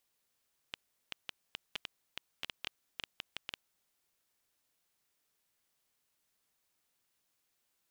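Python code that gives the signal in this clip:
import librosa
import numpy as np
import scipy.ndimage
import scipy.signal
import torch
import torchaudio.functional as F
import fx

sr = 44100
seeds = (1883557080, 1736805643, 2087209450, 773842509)

y = fx.geiger_clicks(sr, seeds[0], length_s=2.95, per_s=6.8, level_db=-20.5)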